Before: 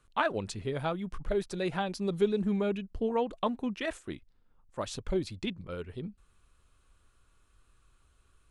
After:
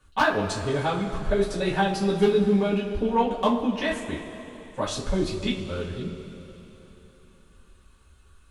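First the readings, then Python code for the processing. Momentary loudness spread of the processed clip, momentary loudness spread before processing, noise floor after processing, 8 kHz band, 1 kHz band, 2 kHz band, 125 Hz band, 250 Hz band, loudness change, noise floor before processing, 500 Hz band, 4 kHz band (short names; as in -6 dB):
14 LU, 13 LU, -56 dBFS, +8.5 dB, +9.0 dB, +9.0 dB, +8.0 dB, +8.0 dB, +7.5 dB, -68 dBFS, +7.0 dB, +9.0 dB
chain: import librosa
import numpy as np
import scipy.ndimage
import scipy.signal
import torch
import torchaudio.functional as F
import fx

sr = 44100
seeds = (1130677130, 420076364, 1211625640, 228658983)

y = np.minimum(x, 2.0 * 10.0 ** (-19.5 / 20.0) - x)
y = fx.rev_double_slope(y, sr, seeds[0], early_s=0.26, late_s=3.6, knee_db=-18, drr_db=-7.5)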